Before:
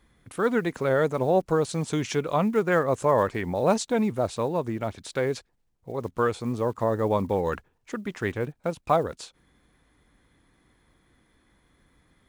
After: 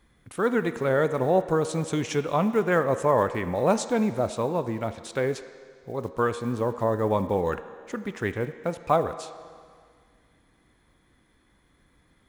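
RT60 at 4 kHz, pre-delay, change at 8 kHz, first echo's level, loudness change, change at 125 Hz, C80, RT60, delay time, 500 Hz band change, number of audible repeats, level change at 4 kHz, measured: 1.9 s, 13 ms, 0.0 dB, no echo audible, 0.0 dB, 0.0 dB, 13.0 dB, 2.0 s, no echo audible, 0.0 dB, no echo audible, −1.0 dB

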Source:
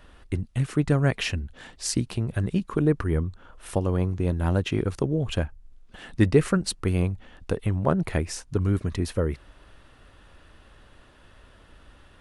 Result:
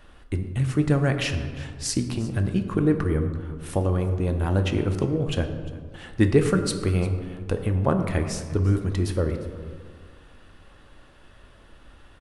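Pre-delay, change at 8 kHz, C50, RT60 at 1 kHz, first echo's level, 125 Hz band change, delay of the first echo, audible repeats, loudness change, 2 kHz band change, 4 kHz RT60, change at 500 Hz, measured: 3 ms, +0.5 dB, 8.5 dB, 1.7 s, −19.5 dB, +1.5 dB, 351 ms, 1, +1.0 dB, +1.0 dB, 0.95 s, +1.5 dB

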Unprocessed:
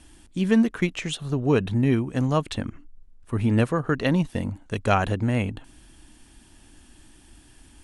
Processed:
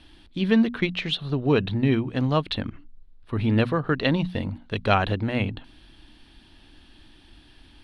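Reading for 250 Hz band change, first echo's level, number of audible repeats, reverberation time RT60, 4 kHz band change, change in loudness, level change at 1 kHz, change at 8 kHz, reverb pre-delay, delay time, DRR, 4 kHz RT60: −0.5 dB, no echo audible, no echo audible, no reverb audible, +5.5 dB, 0.0 dB, +0.5 dB, below −10 dB, no reverb audible, no echo audible, no reverb audible, no reverb audible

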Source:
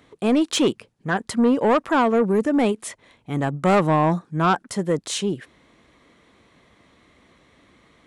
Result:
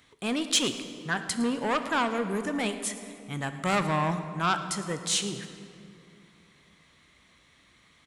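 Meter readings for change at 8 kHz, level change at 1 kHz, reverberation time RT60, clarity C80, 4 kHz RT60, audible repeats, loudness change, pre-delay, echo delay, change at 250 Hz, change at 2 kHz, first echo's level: +2.0 dB, −7.0 dB, 2.6 s, 10.0 dB, 1.6 s, 1, −7.5 dB, 11 ms, 110 ms, −10.0 dB, −2.5 dB, −18.0 dB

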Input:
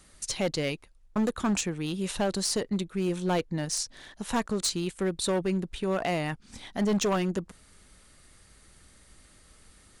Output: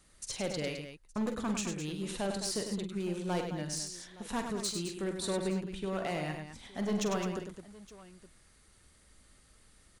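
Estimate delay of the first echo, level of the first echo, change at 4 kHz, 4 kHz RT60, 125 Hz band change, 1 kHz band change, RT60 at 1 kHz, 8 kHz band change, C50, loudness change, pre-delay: 46 ms, −9.0 dB, −6.0 dB, no reverb audible, −6.0 dB, −6.0 dB, no reverb audible, −6.0 dB, no reverb audible, −6.0 dB, no reverb audible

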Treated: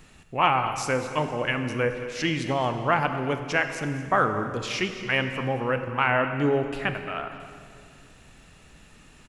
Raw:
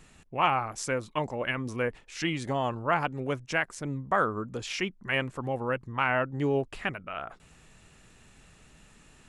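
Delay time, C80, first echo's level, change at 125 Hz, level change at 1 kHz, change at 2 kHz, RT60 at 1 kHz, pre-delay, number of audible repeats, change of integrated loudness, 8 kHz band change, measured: 221 ms, 8.5 dB, −15.5 dB, +4.5 dB, +4.5 dB, +4.5 dB, 2.2 s, 22 ms, 1, +4.5 dB, +2.0 dB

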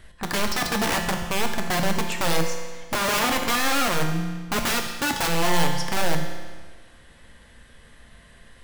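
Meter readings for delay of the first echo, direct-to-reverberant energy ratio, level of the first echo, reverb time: no echo audible, 3.0 dB, no echo audible, 1.5 s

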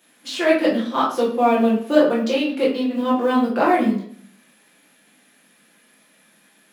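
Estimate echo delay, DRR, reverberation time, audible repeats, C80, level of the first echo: no echo audible, −7.5 dB, 0.55 s, no echo audible, 10.0 dB, no echo audible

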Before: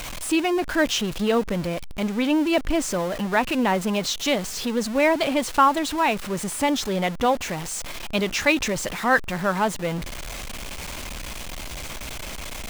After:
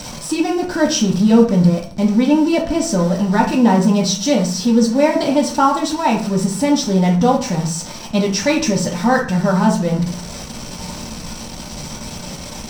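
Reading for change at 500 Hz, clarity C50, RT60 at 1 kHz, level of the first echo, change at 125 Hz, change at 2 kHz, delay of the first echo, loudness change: +6.0 dB, 7.0 dB, 0.40 s, no echo audible, +14.0 dB, −1.0 dB, no echo audible, +7.5 dB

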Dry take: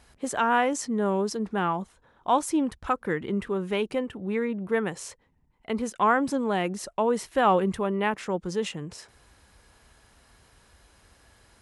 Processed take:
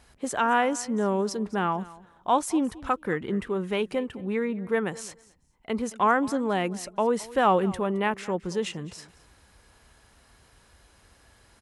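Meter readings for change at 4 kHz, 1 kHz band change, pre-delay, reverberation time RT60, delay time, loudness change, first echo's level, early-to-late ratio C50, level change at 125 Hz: 0.0 dB, 0.0 dB, no reverb audible, no reverb audible, 217 ms, 0.0 dB, −20.0 dB, no reverb audible, 0.0 dB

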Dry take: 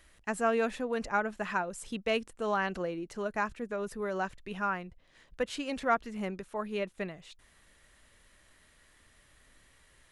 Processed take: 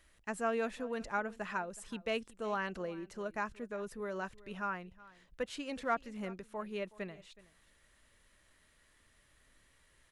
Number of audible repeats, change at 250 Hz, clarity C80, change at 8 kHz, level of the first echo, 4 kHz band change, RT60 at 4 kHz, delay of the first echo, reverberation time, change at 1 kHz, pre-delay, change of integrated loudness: 1, −5.5 dB, no reverb audible, −5.5 dB, −20.5 dB, −5.5 dB, no reverb audible, 371 ms, no reverb audible, −6.0 dB, no reverb audible, −5.5 dB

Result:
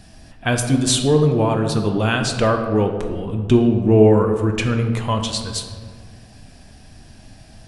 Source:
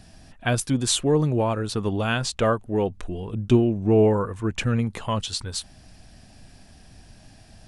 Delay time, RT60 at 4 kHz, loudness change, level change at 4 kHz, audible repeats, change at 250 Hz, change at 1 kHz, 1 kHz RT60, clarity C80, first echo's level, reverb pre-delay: no echo audible, 0.90 s, +5.5 dB, +4.5 dB, no echo audible, +6.0 dB, +5.0 dB, 1.6 s, 8.0 dB, no echo audible, 4 ms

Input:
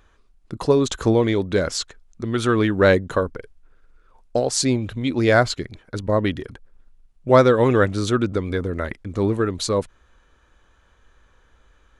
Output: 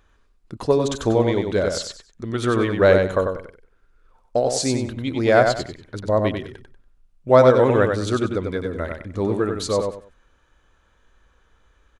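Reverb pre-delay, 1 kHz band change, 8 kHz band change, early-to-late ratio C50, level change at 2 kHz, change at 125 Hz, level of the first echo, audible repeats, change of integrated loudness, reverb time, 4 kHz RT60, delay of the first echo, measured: no reverb audible, +0.5 dB, −2.0 dB, no reverb audible, −1.5 dB, −1.5 dB, −5.0 dB, 3, 0.0 dB, no reverb audible, no reverb audible, 95 ms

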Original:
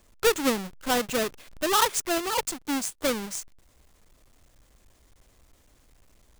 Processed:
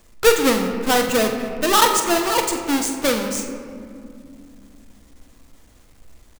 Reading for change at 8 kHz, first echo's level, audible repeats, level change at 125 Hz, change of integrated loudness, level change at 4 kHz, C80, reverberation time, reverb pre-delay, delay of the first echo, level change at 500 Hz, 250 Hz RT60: +7.0 dB, −10.5 dB, 1, +9.0 dB, +8.0 dB, +7.0 dB, 7.5 dB, 2.4 s, 4 ms, 46 ms, +8.5 dB, 3.9 s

